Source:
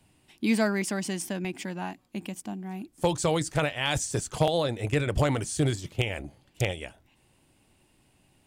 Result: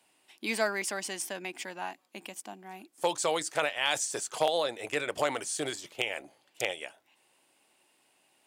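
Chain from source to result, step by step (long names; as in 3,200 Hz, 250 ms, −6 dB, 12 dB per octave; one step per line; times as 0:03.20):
high-pass filter 510 Hz 12 dB per octave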